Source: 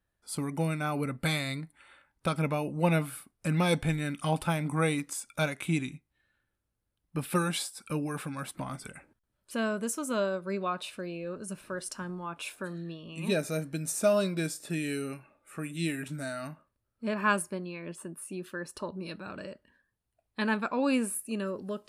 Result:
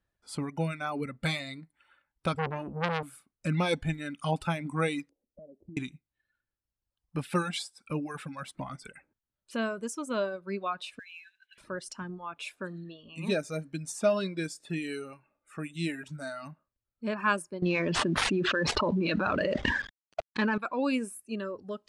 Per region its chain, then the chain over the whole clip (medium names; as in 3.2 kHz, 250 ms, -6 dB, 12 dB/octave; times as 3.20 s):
2.34–3.03 s: low-pass 8.7 kHz + peaking EQ 65 Hz +15 dB 2.4 oct + transformer saturation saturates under 2 kHz
5.09–5.77 s: steep low-pass 570 Hz + peaking EQ 130 Hz -14 dB 0.64 oct + compression 8:1, threshold -42 dBFS
10.99–11.58 s: brick-wall FIR band-pass 1.5–4.1 kHz + treble shelf 3.2 kHz +10 dB + modulation noise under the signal 15 dB
17.62–20.58 s: CVSD coder 64 kbps + low-pass 3.5 kHz + level flattener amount 100%
whole clip: low-pass 7 kHz 12 dB/octave; reverb removal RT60 1.6 s